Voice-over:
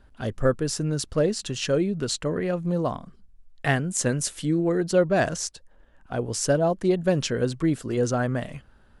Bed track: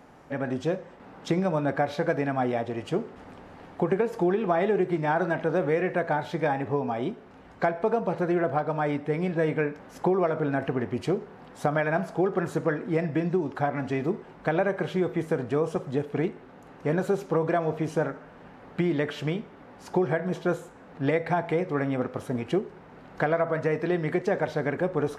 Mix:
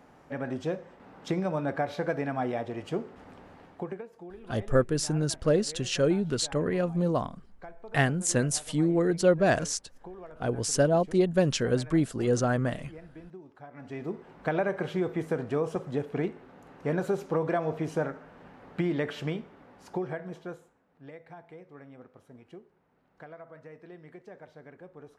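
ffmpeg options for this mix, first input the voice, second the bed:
ffmpeg -i stem1.wav -i stem2.wav -filter_complex "[0:a]adelay=4300,volume=-1.5dB[link_01];[1:a]volume=14dB,afade=type=out:start_time=3.48:duration=0.6:silence=0.141254,afade=type=in:start_time=13.7:duration=0.71:silence=0.125893,afade=type=out:start_time=19.18:duration=1.65:silence=0.112202[link_02];[link_01][link_02]amix=inputs=2:normalize=0" out.wav

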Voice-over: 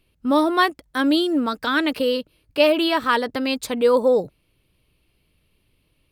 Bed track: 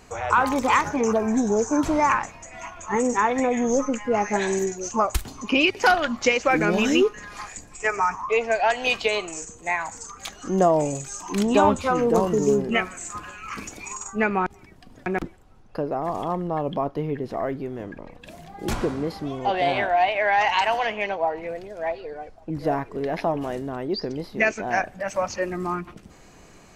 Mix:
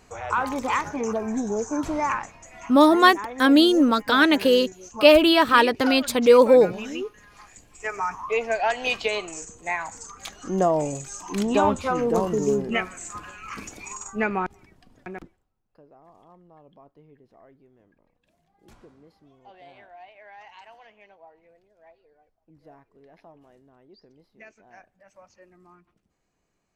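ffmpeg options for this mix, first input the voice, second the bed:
ffmpeg -i stem1.wav -i stem2.wav -filter_complex "[0:a]adelay=2450,volume=3dB[link_01];[1:a]volume=5dB,afade=type=out:start_time=2.7:duration=0.26:silence=0.421697,afade=type=in:start_time=7.47:duration=0.91:silence=0.316228,afade=type=out:start_time=14.31:duration=1.21:silence=0.0630957[link_02];[link_01][link_02]amix=inputs=2:normalize=0" out.wav

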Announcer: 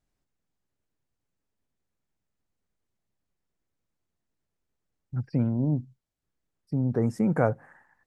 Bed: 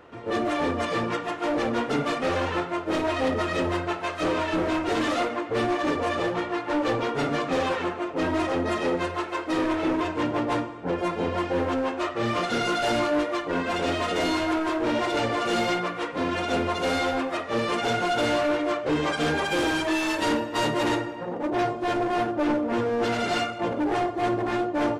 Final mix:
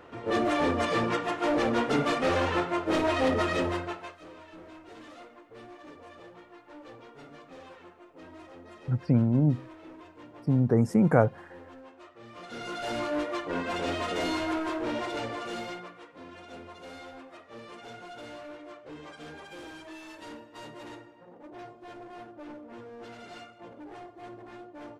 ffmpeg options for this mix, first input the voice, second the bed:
ffmpeg -i stem1.wav -i stem2.wav -filter_complex "[0:a]adelay=3750,volume=2.5dB[link_01];[1:a]volume=17.5dB,afade=type=out:start_time=3.45:duration=0.75:silence=0.0749894,afade=type=in:start_time=12.32:duration=0.99:silence=0.125893,afade=type=out:start_time=14.59:duration=1.47:silence=0.177828[link_02];[link_01][link_02]amix=inputs=2:normalize=0" out.wav

